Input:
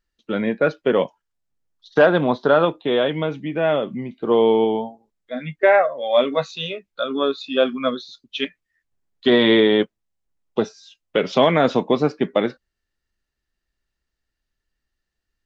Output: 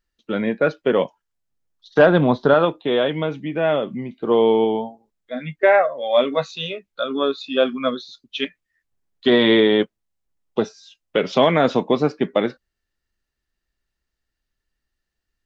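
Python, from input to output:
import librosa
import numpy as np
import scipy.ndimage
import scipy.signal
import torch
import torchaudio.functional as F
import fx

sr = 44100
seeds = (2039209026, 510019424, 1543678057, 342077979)

y = fx.low_shelf(x, sr, hz=170.0, db=11.0, at=(1.99, 2.54))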